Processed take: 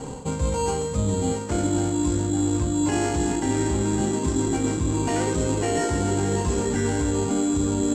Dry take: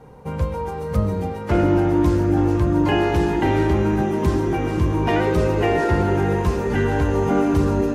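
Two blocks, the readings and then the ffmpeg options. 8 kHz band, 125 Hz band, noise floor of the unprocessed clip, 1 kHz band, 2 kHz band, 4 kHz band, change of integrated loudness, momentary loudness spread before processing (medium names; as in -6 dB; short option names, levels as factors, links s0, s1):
+15.5 dB, -5.0 dB, -29 dBFS, -5.5 dB, -7.0 dB, 0.0 dB, -4.0 dB, 6 LU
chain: -filter_complex "[0:a]equalizer=f=270:w=6.1:g=10.5,asplit=2[s0][s1];[s1]adelay=30,volume=0.282[s2];[s0][s2]amix=inputs=2:normalize=0,asplit=2[s3][s4];[s4]acrusher=samples=12:mix=1:aa=0.000001,volume=0.531[s5];[s3][s5]amix=inputs=2:normalize=0,lowpass=f=7600:t=q:w=14,equalizer=f=4400:w=1.5:g=2,areverse,acompressor=threshold=0.0447:ratio=8,areverse,volume=2"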